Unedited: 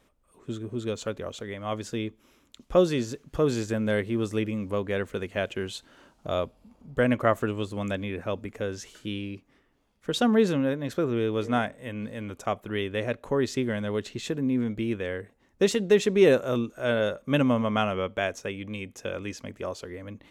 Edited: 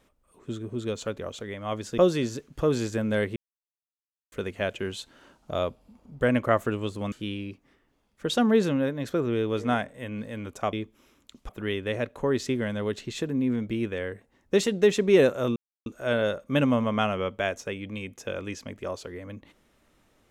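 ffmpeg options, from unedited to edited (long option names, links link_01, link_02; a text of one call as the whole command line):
ffmpeg -i in.wav -filter_complex "[0:a]asplit=8[link_01][link_02][link_03][link_04][link_05][link_06][link_07][link_08];[link_01]atrim=end=1.982[link_09];[link_02]atrim=start=2.738:end=4.12,asetpts=PTS-STARTPTS,afade=type=out:start_time=1.378:duration=0.004:curve=hsin[link_10];[link_03]atrim=start=4.12:end=5.08,asetpts=PTS-STARTPTS,volume=0[link_11];[link_04]atrim=start=5.08:end=7.882,asetpts=PTS-STARTPTS,afade=type=in:duration=0.004:curve=hsin[link_12];[link_05]atrim=start=8.958:end=12.572[link_13];[link_06]atrim=start=1.978:end=2.742[link_14];[link_07]atrim=start=12.568:end=16.64,asetpts=PTS-STARTPTS,afade=type=out:start_time=4.068:duration=0.004:curve=hsin,apad=pad_dur=0.3[link_15];[link_08]atrim=start=16.64,asetpts=PTS-STARTPTS,afade=type=in:duration=0.004:curve=hsin[link_16];[link_10][link_11][link_12]concat=n=3:v=0:a=1[link_17];[link_09][link_17]acrossfade=duration=0.004:curve1=hsin:curve2=hsin[link_18];[link_18][link_13]acrossfade=duration=0.004:curve1=hsin:curve2=hsin[link_19];[link_19][link_14]acrossfade=duration=0.004:curve1=hsin:curve2=hsin[link_20];[link_15][link_16]concat=n=2:v=0:a=1[link_21];[link_20][link_21]acrossfade=duration=0.004:curve1=hsin:curve2=hsin" out.wav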